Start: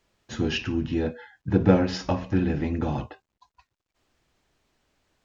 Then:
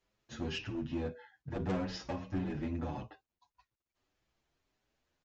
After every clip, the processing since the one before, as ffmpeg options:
-filter_complex "[0:a]aresample=16000,asoftclip=type=hard:threshold=0.0841,aresample=44100,asplit=2[s0][s1];[s1]adelay=7.7,afreqshift=1.7[s2];[s0][s2]amix=inputs=2:normalize=1,volume=0.422"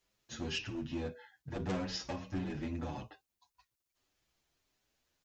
-af "highshelf=f=3300:g=10.5,volume=0.794"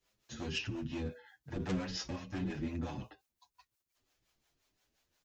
-filter_complex "[0:a]acrossover=split=530|990[s0][s1][s2];[s1]acompressor=threshold=0.00141:ratio=6[s3];[s0][s3][s2]amix=inputs=3:normalize=0,acrossover=split=410[s4][s5];[s4]aeval=exprs='val(0)*(1-0.7/2+0.7/2*cos(2*PI*5.7*n/s))':c=same[s6];[s5]aeval=exprs='val(0)*(1-0.7/2-0.7/2*cos(2*PI*5.7*n/s))':c=same[s7];[s6][s7]amix=inputs=2:normalize=0,volume=1.68"

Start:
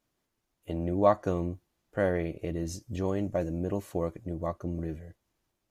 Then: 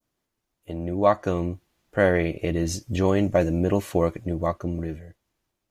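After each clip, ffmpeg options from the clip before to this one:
-af "dynaudnorm=f=240:g=11:m=2.82,adynamicequalizer=threshold=0.00631:dfrequency=2600:dqfactor=0.72:tfrequency=2600:tqfactor=0.72:attack=5:release=100:ratio=0.375:range=3:mode=boostabove:tftype=bell"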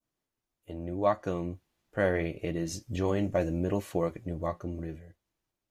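-af "flanger=delay=6:depth=2.9:regen=-73:speed=0.75:shape=sinusoidal,volume=0.708"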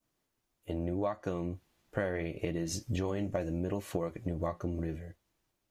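-af "acompressor=threshold=0.0178:ratio=10,volume=1.88"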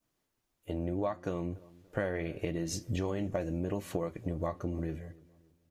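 -filter_complex "[0:a]asplit=2[s0][s1];[s1]adelay=288,lowpass=f=1700:p=1,volume=0.0841,asplit=2[s2][s3];[s3]adelay=288,lowpass=f=1700:p=1,volume=0.39,asplit=2[s4][s5];[s5]adelay=288,lowpass=f=1700:p=1,volume=0.39[s6];[s0][s2][s4][s6]amix=inputs=4:normalize=0"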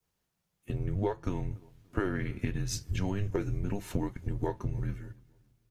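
-filter_complex "[0:a]asplit=2[s0][s1];[s1]aeval=exprs='sgn(val(0))*max(abs(val(0))-0.00299,0)':c=same,volume=0.335[s2];[s0][s2]amix=inputs=2:normalize=0,afreqshift=-200"

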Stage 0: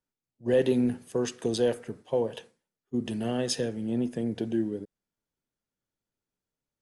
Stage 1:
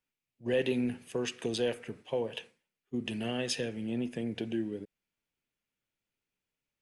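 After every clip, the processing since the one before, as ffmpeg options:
-filter_complex "[0:a]equalizer=f=2500:t=o:w=0.9:g=12,asplit=2[s0][s1];[s1]acompressor=threshold=0.0224:ratio=6,volume=0.891[s2];[s0][s2]amix=inputs=2:normalize=0,volume=0.398"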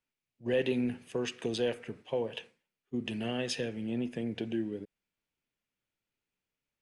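-af "highshelf=f=9400:g=-10.5"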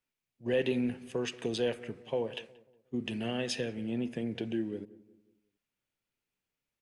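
-filter_complex "[0:a]asplit=2[s0][s1];[s1]adelay=181,lowpass=f=1100:p=1,volume=0.126,asplit=2[s2][s3];[s3]adelay=181,lowpass=f=1100:p=1,volume=0.43,asplit=2[s4][s5];[s5]adelay=181,lowpass=f=1100:p=1,volume=0.43,asplit=2[s6][s7];[s7]adelay=181,lowpass=f=1100:p=1,volume=0.43[s8];[s0][s2][s4][s6][s8]amix=inputs=5:normalize=0"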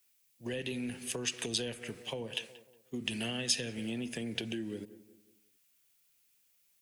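-filter_complex "[0:a]acrossover=split=250[s0][s1];[s0]alimiter=level_in=4.22:limit=0.0631:level=0:latency=1,volume=0.237[s2];[s1]acompressor=threshold=0.01:ratio=16[s3];[s2][s3]amix=inputs=2:normalize=0,crystalizer=i=8:c=0"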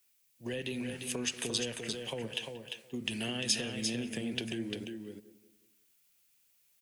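-af "aecho=1:1:348:0.531"

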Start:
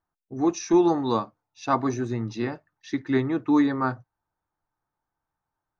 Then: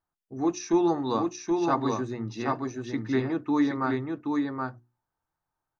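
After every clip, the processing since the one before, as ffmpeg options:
-af "bandreject=f=60:t=h:w=6,bandreject=f=120:t=h:w=6,bandreject=f=180:t=h:w=6,bandreject=f=240:t=h:w=6,bandreject=f=300:t=h:w=6,bandreject=f=360:t=h:w=6,aecho=1:1:775:0.668,volume=0.708"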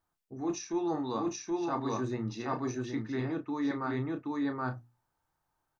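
-filter_complex "[0:a]areverse,acompressor=threshold=0.0178:ratio=6,areverse,asplit=2[s0][s1];[s1]adelay=32,volume=0.355[s2];[s0][s2]amix=inputs=2:normalize=0,volume=1.58"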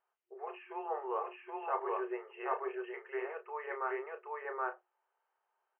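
-af "afftfilt=real='re*between(b*sr/4096,360,3200)':imag='im*between(b*sr/4096,360,3200)':win_size=4096:overlap=0.75"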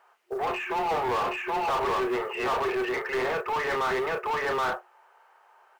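-filter_complex "[0:a]asplit=2[s0][s1];[s1]highpass=f=720:p=1,volume=35.5,asoftclip=type=tanh:threshold=0.0794[s2];[s0][s2]amix=inputs=2:normalize=0,lowpass=f=2100:p=1,volume=0.501,acrusher=bits=8:mode=log:mix=0:aa=0.000001,volume=1.33"

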